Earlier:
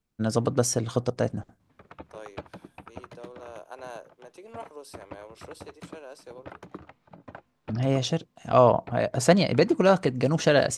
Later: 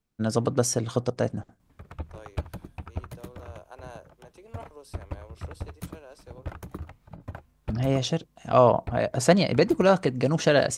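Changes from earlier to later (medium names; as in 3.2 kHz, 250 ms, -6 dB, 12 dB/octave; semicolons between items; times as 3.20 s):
second voice -4.0 dB; background: remove band-pass 220–4600 Hz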